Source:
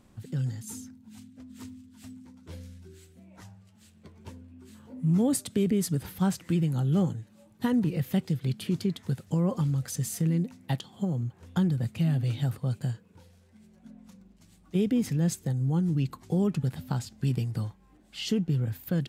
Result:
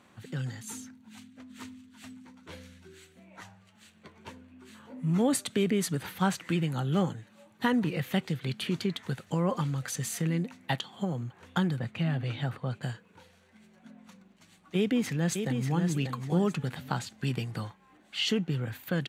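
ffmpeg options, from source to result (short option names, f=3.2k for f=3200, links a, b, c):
-filter_complex "[0:a]asettb=1/sr,asplit=3[a][b][c];[a]atrim=end=11.794[d];[b]atrim=start=11.79:end=12.83,asetpts=PTS-STARTPTS,afade=t=in:d=0.004:c=qsin,afade=t=out:st=1.036:d=0.004:c=qsin,lowpass=f=2.6k:p=1[e];[c]atrim=start=12.826[f];[d][e]acrossfade=d=0.004:c1=hsin:c2=qsin[g];[g][f]acrossfade=d=0.004:c1=qsin:c2=hsin,asplit=2[h][i];[i]afade=t=in:st=14.76:d=0.01,afade=t=out:st=15.81:d=0.01,aecho=0:1:590|1180|1770:0.501187|0.125297|0.0313242[j];[h][j]amix=inputs=2:normalize=0,highpass=110,equalizer=f=1.8k:w=0.33:g=12.5,bandreject=f=5.1k:w=9.9,volume=-4dB"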